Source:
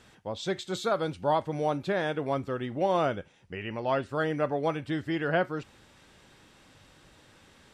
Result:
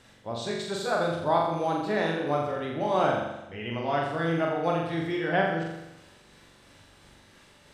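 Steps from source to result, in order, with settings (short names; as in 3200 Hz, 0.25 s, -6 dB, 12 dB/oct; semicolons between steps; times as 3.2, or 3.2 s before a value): delay-line pitch shifter +1 st; flutter echo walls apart 7.3 m, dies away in 0.94 s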